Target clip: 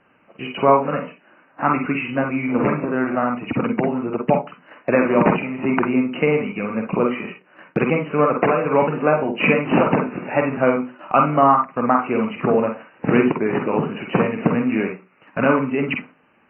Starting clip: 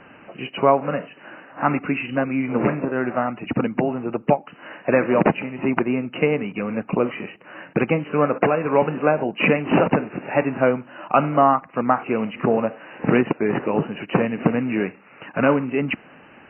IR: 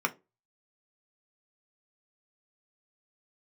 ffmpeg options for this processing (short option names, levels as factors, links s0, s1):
-filter_complex "[0:a]agate=range=0.224:threshold=0.0158:ratio=16:detection=peak,asplit=2[s0][s1];[1:a]atrim=start_sample=2205,adelay=47[s2];[s1][s2]afir=irnorm=-1:irlink=0,volume=0.266[s3];[s0][s3]amix=inputs=2:normalize=0"